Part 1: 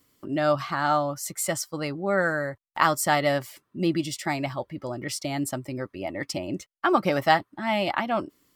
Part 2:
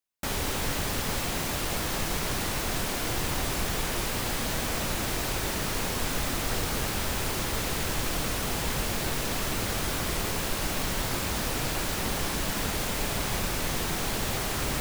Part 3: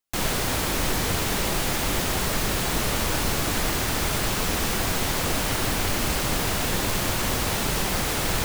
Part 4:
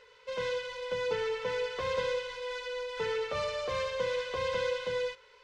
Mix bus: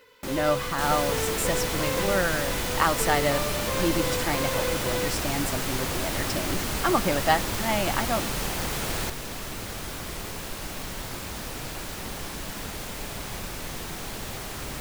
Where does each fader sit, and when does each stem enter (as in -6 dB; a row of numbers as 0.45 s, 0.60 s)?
-2.0 dB, -5.5 dB, -5.5 dB, +1.5 dB; 0.00 s, 0.00 s, 0.65 s, 0.00 s